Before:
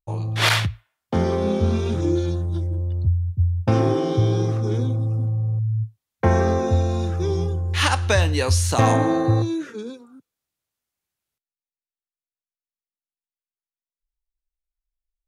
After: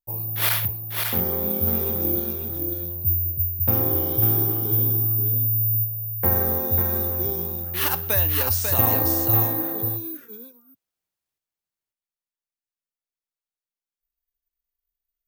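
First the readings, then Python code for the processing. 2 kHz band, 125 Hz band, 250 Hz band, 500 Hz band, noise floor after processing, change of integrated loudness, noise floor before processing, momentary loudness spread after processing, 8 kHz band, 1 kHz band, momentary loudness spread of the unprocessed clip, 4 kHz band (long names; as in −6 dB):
−6.5 dB, −6.5 dB, −6.5 dB, −7.0 dB, below −85 dBFS, +1.0 dB, below −85 dBFS, 8 LU, −1.5 dB, −6.5 dB, 7 LU, −6.5 dB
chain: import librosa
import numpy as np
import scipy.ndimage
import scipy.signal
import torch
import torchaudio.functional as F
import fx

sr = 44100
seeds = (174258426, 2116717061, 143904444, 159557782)

p1 = x + fx.echo_single(x, sr, ms=545, db=-4.5, dry=0)
p2 = (np.kron(p1[::3], np.eye(3)[0]) * 3)[:len(p1)]
y = p2 * librosa.db_to_amplitude(-8.0)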